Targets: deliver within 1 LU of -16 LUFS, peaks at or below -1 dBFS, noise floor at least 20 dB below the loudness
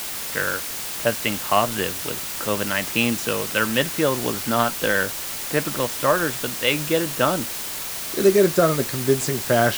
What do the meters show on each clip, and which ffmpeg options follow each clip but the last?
noise floor -30 dBFS; noise floor target -42 dBFS; loudness -22.0 LUFS; peak -3.5 dBFS; loudness target -16.0 LUFS
-> -af "afftdn=nr=12:nf=-30"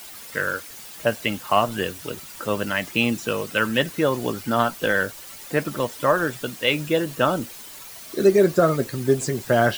noise floor -41 dBFS; noise floor target -43 dBFS
-> -af "afftdn=nr=6:nf=-41"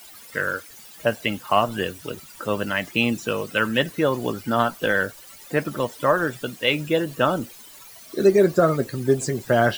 noise floor -45 dBFS; loudness -23.0 LUFS; peak -4.0 dBFS; loudness target -16.0 LUFS
-> -af "volume=7dB,alimiter=limit=-1dB:level=0:latency=1"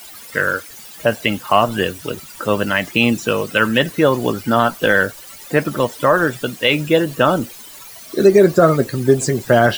loudness -16.5 LUFS; peak -1.0 dBFS; noise floor -38 dBFS

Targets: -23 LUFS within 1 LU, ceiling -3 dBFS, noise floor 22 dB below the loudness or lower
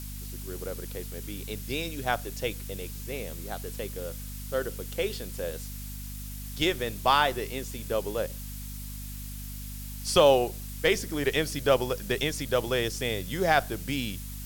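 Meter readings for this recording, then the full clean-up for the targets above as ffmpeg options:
hum 50 Hz; harmonics up to 250 Hz; hum level -37 dBFS; noise floor -38 dBFS; noise floor target -52 dBFS; loudness -29.5 LUFS; peak -7.5 dBFS; loudness target -23.0 LUFS
-> -af "bandreject=f=50:t=h:w=6,bandreject=f=100:t=h:w=6,bandreject=f=150:t=h:w=6,bandreject=f=200:t=h:w=6,bandreject=f=250:t=h:w=6"
-af "afftdn=nr=14:nf=-38"
-af "volume=6.5dB,alimiter=limit=-3dB:level=0:latency=1"

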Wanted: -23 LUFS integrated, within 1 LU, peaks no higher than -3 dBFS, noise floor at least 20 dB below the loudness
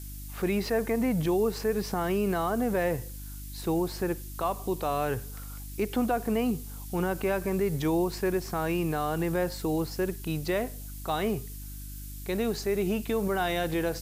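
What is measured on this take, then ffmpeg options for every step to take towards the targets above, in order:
hum 50 Hz; harmonics up to 300 Hz; hum level -38 dBFS; noise floor -40 dBFS; noise floor target -50 dBFS; loudness -29.5 LUFS; peak -15.5 dBFS; loudness target -23.0 LUFS
-> -af "bandreject=f=50:t=h:w=4,bandreject=f=100:t=h:w=4,bandreject=f=150:t=h:w=4,bandreject=f=200:t=h:w=4,bandreject=f=250:t=h:w=4,bandreject=f=300:t=h:w=4"
-af "afftdn=nr=10:nf=-40"
-af "volume=6.5dB"

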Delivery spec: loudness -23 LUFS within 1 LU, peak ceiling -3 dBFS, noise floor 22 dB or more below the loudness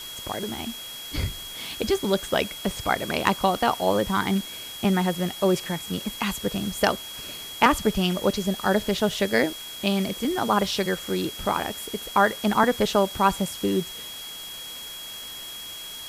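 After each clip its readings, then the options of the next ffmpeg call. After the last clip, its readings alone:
steady tone 3300 Hz; tone level -37 dBFS; noise floor -38 dBFS; noise floor target -48 dBFS; loudness -25.5 LUFS; peak -6.0 dBFS; loudness target -23.0 LUFS
-> -af "bandreject=f=3.3k:w=30"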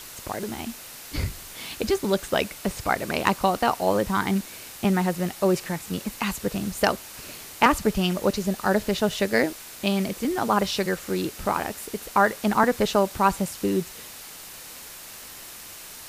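steady tone none; noise floor -42 dBFS; noise floor target -47 dBFS
-> -af "afftdn=nr=6:nf=-42"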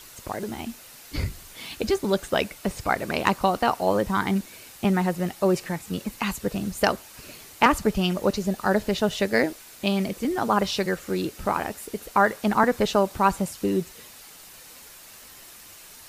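noise floor -47 dBFS; loudness -25.0 LUFS; peak -6.0 dBFS; loudness target -23.0 LUFS
-> -af "volume=2dB"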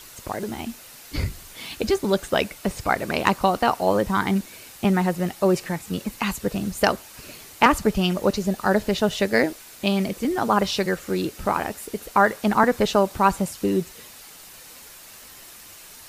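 loudness -23.0 LUFS; peak -4.0 dBFS; noise floor -45 dBFS

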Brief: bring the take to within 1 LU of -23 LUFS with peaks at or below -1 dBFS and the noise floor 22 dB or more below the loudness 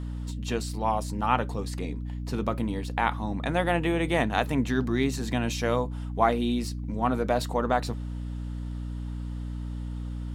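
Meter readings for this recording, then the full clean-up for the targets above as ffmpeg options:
hum 60 Hz; harmonics up to 300 Hz; hum level -31 dBFS; loudness -28.5 LUFS; peak -7.0 dBFS; loudness target -23.0 LUFS
-> -af "bandreject=f=60:t=h:w=4,bandreject=f=120:t=h:w=4,bandreject=f=180:t=h:w=4,bandreject=f=240:t=h:w=4,bandreject=f=300:t=h:w=4"
-af "volume=5.5dB"

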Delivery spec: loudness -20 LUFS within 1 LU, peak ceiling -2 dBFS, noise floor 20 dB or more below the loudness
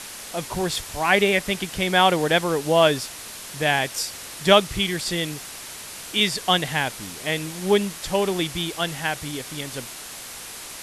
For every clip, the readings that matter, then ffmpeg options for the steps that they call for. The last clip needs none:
noise floor -38 dBFS; noise floor target -43 dBFS; loudness -22.5 LUFS; peak -2.0 dBFS; loudness target -20.0 LUFS
-> -af "afftdn=nr=6:nf=-38"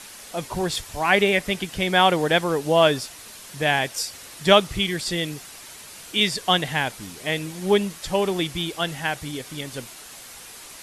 noise floor -42 dBFS; noise floor target -43 dBFS
-> -af "afftdn=nr=6:nf=-42"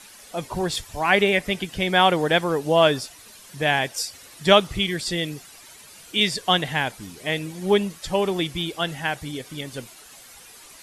noise floor -47 dBFS; loudness -22.5 LUFS; peak -2.0 dBFS; loudness target -20.0 LUFS
-> -af "volume=2.5dB,alimiter=limit=-2dB:level=0:latency=1"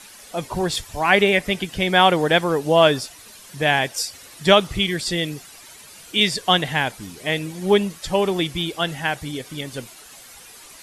loudness -20.0 LUFS; peak -2.0 dBFS; noise floor -44 dBFS

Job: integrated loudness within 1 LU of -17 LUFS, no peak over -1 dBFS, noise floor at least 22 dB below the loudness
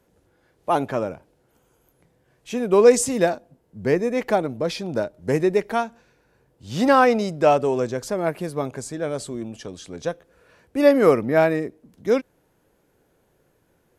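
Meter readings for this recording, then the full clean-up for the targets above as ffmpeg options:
loudness -21.5 LUFS; peak -2.0 dBFS; loudness target -17.0 LUFS
-> -af "volume=4.5dB,alimiter=limit=-1dB:level=0:latency=1"

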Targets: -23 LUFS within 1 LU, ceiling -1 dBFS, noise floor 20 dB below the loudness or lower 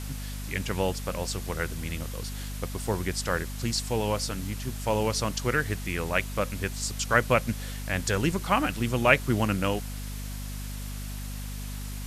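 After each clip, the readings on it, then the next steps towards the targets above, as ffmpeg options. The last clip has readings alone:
hum 50 Hz; harmonics up to 250 Hz; hum level -33 dBFS; noise floor -36 dBFS; noise floor target -49 dBFS; loudness -29.0 LUFS; peak -4.0 dBFS; loudness target -23.0 LUFS
-> -af "bandreject=f=50:t=h:w=4,bandreject=f=100:t=h:w=4,bandreject=f=150:t=h:w=4,bandreject=f=200:t=h:w=4,bandreject=f=250:t=h:w=4"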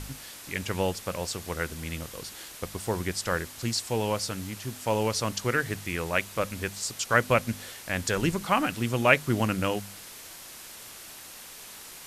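hum none; noise floor -45 dBFS; noise floor target -49 dBFS
-> -af "afftdn=nr=6:nf=-45"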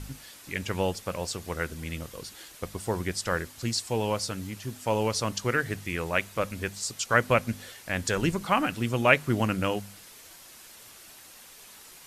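noise floor -50 dBFS; loudness -28.5 LUFS; peak -4.0 dBFS; loudness target -23.0 LUFS
-> -af "volume=5.5dB,alimiter=limit=-1dB:level=0:latency=1"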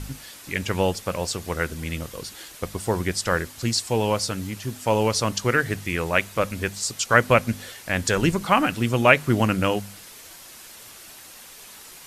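loudness -23.5 LUFS; peak -1.0 dBFS; noise floor -45 dBFS

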